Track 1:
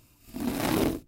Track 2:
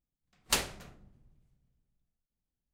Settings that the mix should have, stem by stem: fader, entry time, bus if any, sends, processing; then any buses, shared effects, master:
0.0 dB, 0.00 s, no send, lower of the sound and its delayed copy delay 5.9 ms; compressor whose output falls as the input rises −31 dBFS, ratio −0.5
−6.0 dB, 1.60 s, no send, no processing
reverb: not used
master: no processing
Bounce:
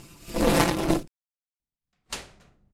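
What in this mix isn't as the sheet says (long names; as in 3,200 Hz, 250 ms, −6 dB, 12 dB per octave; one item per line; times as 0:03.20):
stem 1 0.0 dB → +10.5 dB
master: extra low-pass filter 10,000 Hz 12 dB per octave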